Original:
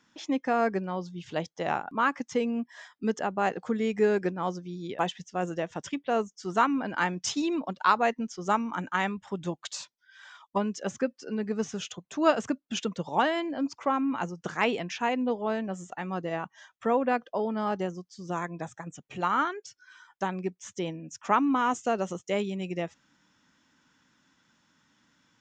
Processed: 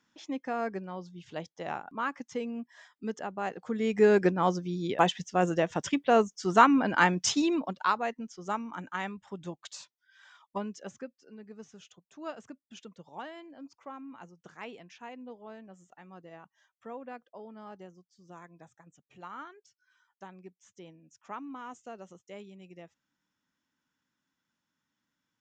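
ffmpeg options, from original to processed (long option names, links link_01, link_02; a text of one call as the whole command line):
ffmpeg -i in.wav -af "volume=4.5dB,afade=type=in:start_time=3.63:duration=0.6:silence=0.266073,afade=type=out:start_time=7.11:duration=0.9:silence=0.266073,afade=type=out:start_time=10.64:duration=0.52:silence=0.316228" out.wav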